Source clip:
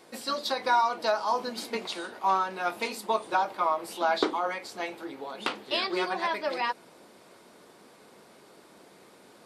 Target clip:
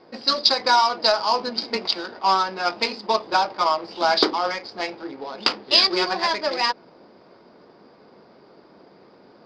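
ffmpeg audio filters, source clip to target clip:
ffmpeg -i in.wav -af "adynamicsmooth=sensitivity=5.5:basefreq=1300,lowpass=frequency=4900:width_type=q:width=13,volume=5.5dB" out.wav

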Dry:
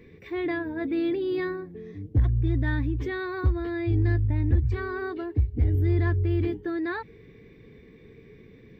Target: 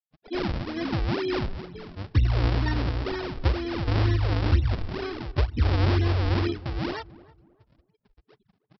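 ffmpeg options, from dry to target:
ffmpeg -i in.wav -filter_complex "[0:a]afftdn=noise_reduction=28:noise_floor=-35,afftfilt=real='re*gte(hypot(re,im),0.01)':imag='im*gte(hypot(re,im),0.01)':win_size=1024:overlap=0.75,adynamicequalizer=threshold=0.00355:dfrequency=1900:dqfactor=0.75:tfrequency=1900:tqfactor=0.75:attack=5:release=100:ratio=0.375:range=1.5:mode=cutabove:tftype=bell,aexciter=amount=4.3:drive=3.1:freq=2200,aresample=11025,acrusher=samples=16:mix=1:aa=0.000001:lfo=1:lforange=25.6:lforate=2.1,aresample=44100,asplit=2[link_01][link_02];[link_02]asetrate=33038,aresample=44100,atempo=1.33484,volume=-11dB[link_03];[link_01][link_03]amix=inputs=2:normalize=0,asplit=2[link_04][link_05];[link_05]adelay=311,lowpass=frequency=990:poles=1,volume=-19dB,asplit=2[link_06][link_07];[link_07]adelay=311,lowpass=frequency=990:poles=1,volume=0.33,asplit=2[link_08][link_09];[link_09]adelay=311,lowpass=frequency=990:poles=1,volume=0.33[link_10];[link_04][link_06][link_08][link_10]amix=inputs=4:normalize=0" out.wav

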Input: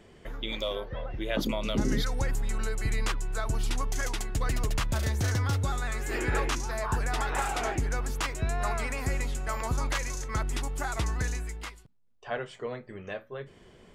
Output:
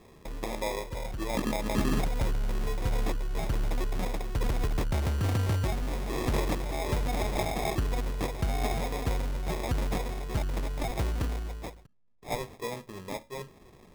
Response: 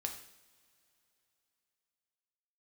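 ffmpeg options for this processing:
-af "acrusher=samples=30:mix=1:aa=0.000001"

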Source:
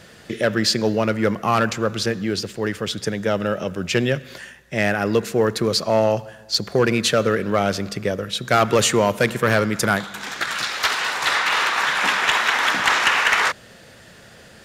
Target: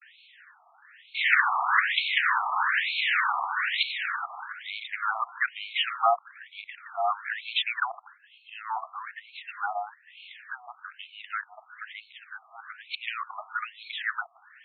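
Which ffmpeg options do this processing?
ffmpeg -i in.wav -af "areverse,afftfilt=real='re*between(b*sr/1024,910*pow(3100/910,0.5+0.5*sin(2*PI*1.1*pts/sr))/1.41,910*pow(3100/910,0.5+0.5*sin(2*PI*1.1*pts/sr))*1.41)':imag='im*between(b*sr/1024,910*pow(3100/910,0.5+0.5*sin(2*PI*1.1*pts/sr))/1.41,910*pow(3100/910,0.5+0.5*sin(2*PI*1.1*pts/sr))*1.41)':win_size=1024:overlap=0.75,volume=-1.5dB" out.wav

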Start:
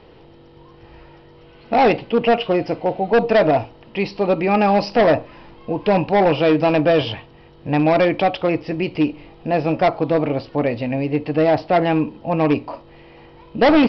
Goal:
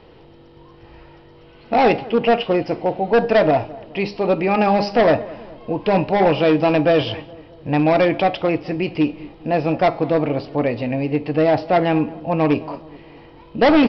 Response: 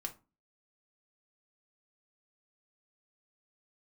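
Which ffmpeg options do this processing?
-filter_complex "[0:a]bandreject=frequency=204.3:width_type=h:width=4,bandreject=frequency=408.6:width_type=h:width=4,bandreject=frequency=612.9:width_type=h:width=4,bandreject=frequency=817.2:width_type=h:width=4,bandreject=frequency=1021.5:width_type=h:width=4,bandreject=frequency=1225.8:width_type=h:width=4,bandreject=frequency=1430.1:width_type=h:width=4,bandreject=frequency=1634.4:width_type=h:width=4,bandreject=frequency=1838.7:width_type=h:width=4,bandreject=frequency=2043:width_type=h:width=4,bandreject=frequency=2247.3:width_type=h:width=4,bandreject=frequency=2451.6:width_type=h:width=4,bandreject=frequency=2655.9:width_type=h:width=4,bandreject=frequency=2860.2:width_type=h:width=4,bandreject=frequency=3064.5:width_type=h:width=4,bandreject=frequency=3268.8:width_type=h:width=4,bandreject=frequency=3473.1:width_type=h:width=4,bandreject=frequency=3677.4:width_type=h:width=4,bandreject=frequency=3881.7:width_type=h:width=4,bandreject=frequency=4086:width_type=h:width=4,bandreject=frequency=4290.3:width_type=h:width=4,bandreject=frequency=4494.6:width_type=h:width=4,bandreject=frequency=4698.9:width_type=h:width=4,bandreject=frequency=4903.2:width_type=h:width=4,bandreject=frequency=5107.5:width_type=h:width=4,bandreject=frequency=5311.8:width_type=h:width=4,bandreject=frequency=5516.1:width_type=h:width=4,bandreject=frequency=5720.4:width_type=h:width=4,bandreject=frequency=5924.7:width_type=h:width=4,bandreject=frequency=6129:width_type=h:width=4,bandreject=frequency=6333.3:width_type=h:width=4,bandreject=frequency=6537.6:width_type=h:width=4,bandreject=frequency=6741.9:width_type=h:width=4,bandreject=frequency=6946.2:width_type=h:width=4,asplit=2[link_01][link_02];[link_02]adelay=211,lowpass=frequency=1300:poles=1,volume=-19dB,asplit=2[link_03][link_04];[link_04]adelay=211,lowpass=frequency=1300:poles=1,volume=0.53,asplit=2[link_05][link_06];[link_06]adelay=211,lowpass=frequency=1300:poles=1,volume=0.53,asplit=2[link_07][link_08];[link_08]adelay=211,lowpass=frequency=1300:poles=1,volume=0.53[link_09];[link_03][link_05][link_07][link_09]amix=inputs=4:normalize=0[link_10];[link_01][link_10]amix=inputs=2:normalize=0"

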